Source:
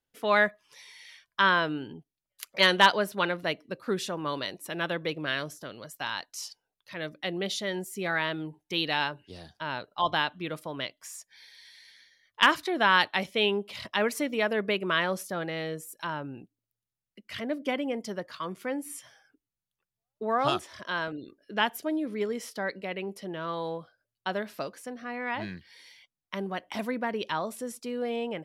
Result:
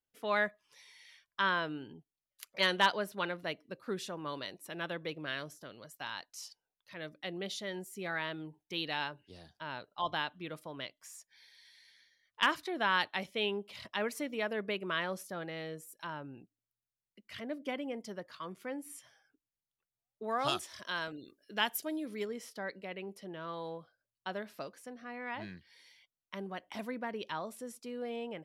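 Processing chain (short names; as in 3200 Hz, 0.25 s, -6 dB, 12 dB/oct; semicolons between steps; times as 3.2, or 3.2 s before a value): 20.24–22.25 high shelf 3200 Hz +12 dB; gain -8 dB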